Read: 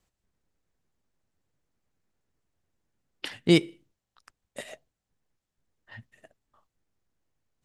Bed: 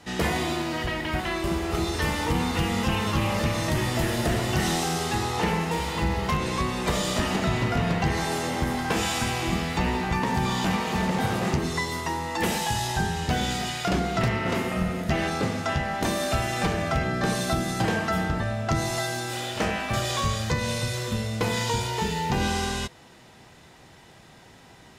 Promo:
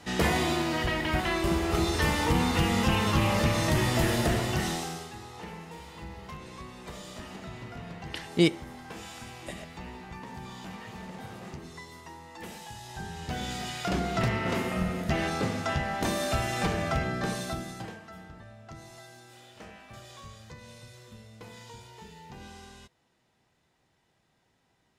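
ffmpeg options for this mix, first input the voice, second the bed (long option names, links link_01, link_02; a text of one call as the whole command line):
ffmpeg -i stem1.wav -i stem2.wav -filter_complex "[0:a]adelay=4900,volume=-2.5dB[link_01];[1:a]volume=14dB,afade=type=out:start_time=4.12:duration=1:silence=0.141254,afade=type=in:start_time=12.83:duration=1.35:silence=0.199526,afade=type=out:start_time=16.92:duration=1.07:silence=0.125893[link_02];[link_01][link_02]amix=inputs=2:normalize=0" out.wav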